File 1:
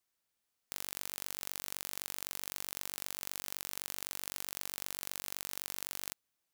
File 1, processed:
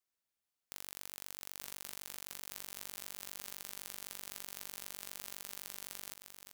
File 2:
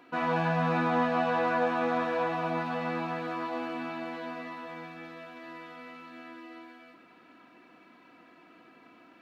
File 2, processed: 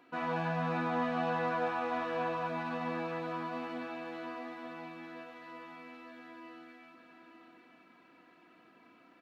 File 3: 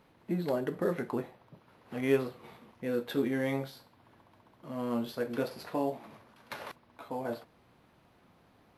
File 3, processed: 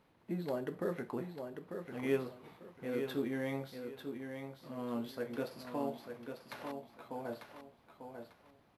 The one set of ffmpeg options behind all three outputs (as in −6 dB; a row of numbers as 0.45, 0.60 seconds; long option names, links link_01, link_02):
-af "aecho=1:1:895|1790|2685:0.447|0.116|0.0302,volume=-6dB"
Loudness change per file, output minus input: −5.5, −5.5, −6.5 LU